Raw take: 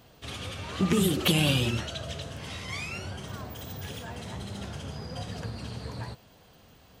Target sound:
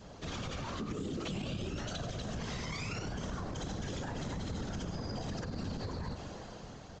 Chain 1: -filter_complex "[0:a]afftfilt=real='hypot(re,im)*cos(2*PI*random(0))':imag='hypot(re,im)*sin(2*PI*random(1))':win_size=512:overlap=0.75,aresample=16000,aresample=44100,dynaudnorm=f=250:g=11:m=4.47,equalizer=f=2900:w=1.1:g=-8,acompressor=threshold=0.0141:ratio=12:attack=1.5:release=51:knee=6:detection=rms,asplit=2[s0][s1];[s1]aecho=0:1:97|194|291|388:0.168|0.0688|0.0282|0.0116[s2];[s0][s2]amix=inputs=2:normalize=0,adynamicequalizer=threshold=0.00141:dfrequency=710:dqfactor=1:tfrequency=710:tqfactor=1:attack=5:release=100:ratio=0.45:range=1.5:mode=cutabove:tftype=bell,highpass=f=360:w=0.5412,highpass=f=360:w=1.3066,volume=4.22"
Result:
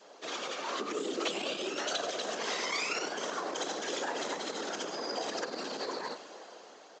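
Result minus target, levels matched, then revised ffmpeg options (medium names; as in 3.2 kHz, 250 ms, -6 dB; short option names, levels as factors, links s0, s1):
compression: peak gain reduction -9 dB; 500 Hz band +2.5 dB
-filter_complex "[0:a]afftfilt=real='hypot(re,im)*cos(2*PI*random(0))':imag='hypot(re,im)*sin(2*PI*random(1))':win_size=512:overlap=0.75,aresample=16000,aresample=44100,dynaudnorm=f=250:g=11:m=4.47,equalizer=f=2900:w=1.1:g=-8,acompressor=threshold=0.00447:ratio=12:attack=1.5:release=51:knee=6:detection=rms,asplit=2[s0][s1];[s1]aecho=0:1:97|194|291|388:0.168|0.0688|0.0282|0.0116[s2];[s0][s2]amix=inputs=2:normalize=0,adynamicequalizer=threshold=0.00141:dfrequency=710:dqfactor=1:tfrequency=710:tqfactor=1:attack=5:release=100:ratio=0.45:range=1.5:mode=cutabove:tftype=bell,volume=4.22"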